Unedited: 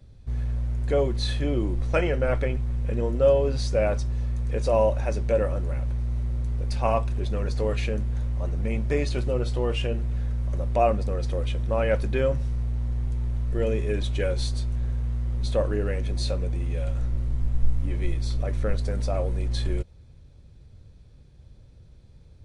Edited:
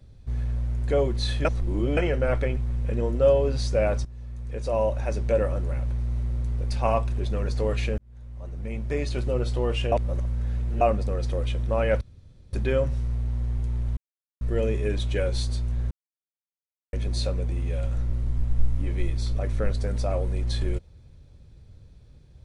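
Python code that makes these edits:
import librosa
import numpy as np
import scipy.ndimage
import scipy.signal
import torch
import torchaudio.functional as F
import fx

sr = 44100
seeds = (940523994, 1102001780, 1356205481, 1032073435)

y = fx.edit(x, sr, fx.reverse_span(start_s=1.45, length_s=0.52),
    fx.fade_in_from(start_s=4.05, length_s=1.22, floor_db=-16.0),
    fx.fade_in_span(start_s=7.98, length_s=1.39),
    fx.reverse_span(start_s=9.92, length_s=0.89),
    fx.insert_room_tone(at_s=12.01, length_s=0.52),
    fx.insert_silence(at_s=13.45, length_s=0.44),
    fx.silence(start_s=14.95, length_s=1.02), tone=tone)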